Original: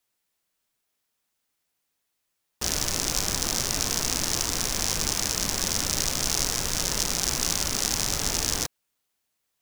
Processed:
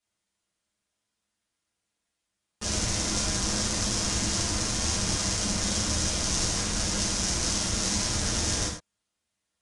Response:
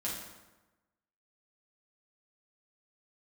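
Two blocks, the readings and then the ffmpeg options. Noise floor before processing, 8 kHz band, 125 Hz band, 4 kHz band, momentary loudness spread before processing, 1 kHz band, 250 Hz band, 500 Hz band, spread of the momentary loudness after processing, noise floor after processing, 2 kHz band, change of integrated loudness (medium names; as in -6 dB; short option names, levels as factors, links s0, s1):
-79 dBFS, -1.5 dB, +4.0 dB, -1.5 dB, 1 LU, -1.0 dB, +4.0 dB, 0.0 dB, 1 LU, -83 dBFS, -1.0 dB, -1.5 dB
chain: -filter_complex "[0:a]equalizer=f=78:w=0.57:g=5,aresample=22050,aresample=44100[s0];[1:a]atrim=start_sample=2205,atrim=end_sample=6174[s1];[s0][s1]afir=irnorm=-1:irlink=0,volume=0.668"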